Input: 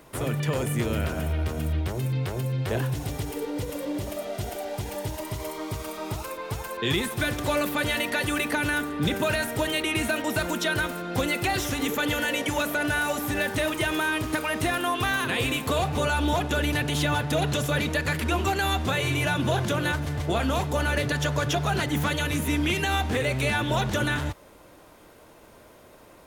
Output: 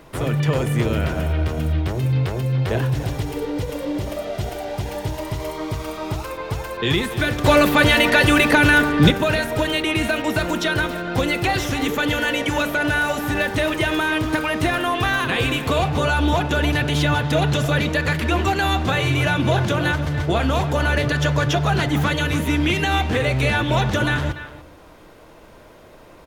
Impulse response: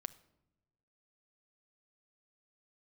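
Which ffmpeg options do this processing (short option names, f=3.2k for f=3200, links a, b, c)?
-filter_complex "[0:a]asettb=1/sr,asplit=3[a][b][c];[a]atrim=end=7.444[d];[b]atrim=start=7.44:end=9.11,asetpts=PTS-STARTPTS,afade=t=in:d=0.004:c=qsin,afade=t=out:st=1.666:d=0.004:c=qsin,acontrast=69[e];[c]atrim=start=9.106[f];[d][e]acrossfade=d=0.004:c1=hsin:c2=qsin[g];[g][f]acrossfade=d=0.004:c1=qsin:c2=hsin,asplit=2[h][i];[i]adelay=290,highpass=300,lowpass=3.4k,asoftclip=type=hard:threshold=-17dB,volume=-12dB[j];[h][j]amix=inputs=2:normalize=0,asplit=2[k][l];[1:a]atrim=start_sample=2205,lowpass=6.8k,lowshelf=f=65:g=12[m];[l][m]afir=irnorm=-1:irlink=0,volume=3.5dB[n];[k][n]amix=inputs=2:normalize=0,volume=-1dB"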